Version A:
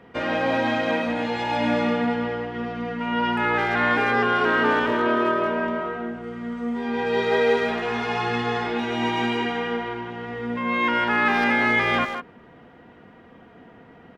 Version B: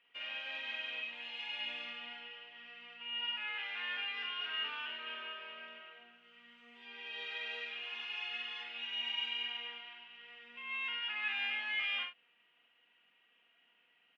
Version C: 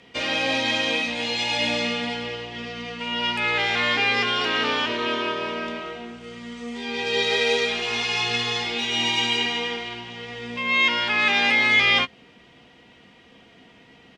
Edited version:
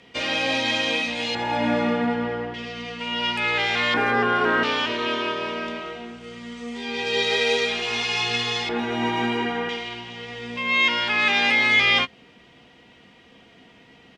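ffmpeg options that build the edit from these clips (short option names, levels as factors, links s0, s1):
-filter_complex "[0:a]asplit=3[s0][s1][s2];[2:a]asplit=4[s3][s4][s5][s6];[s3]atrim=end=1.352[s7];[s0]atrim=start=1.348:end=2.542[s8];[s4]atrim=start=2.538:end=3.942[s9];[s1]atrim=start=3.938:end=4.632[s10];[s5]atrim=start=4.628:end=8.692[s11];[s2]atrim=start=8.688:end=9.692[s12];[s6]atrim=start=9.688[s13];[s7][s8]acrossfade=d=0.004:c1=hsin:c2=hsin[s14];[s14][s9]acrossfade=d=0.004:c1=hsin:c2=hsin[s15];[s15][s10]acrossfade=d=0.004:c1=hsin:c2=hsin[s16];[s16][s11]acrossfade=d=0.004:c1=hsin:c2=hsin[s17];[s17][s12]acrossfade=d=0.004:c1=hsin:c2=hsin[s18];[s18][s13]acrossfade=d=0.004:c1=hsin:c2=hsin"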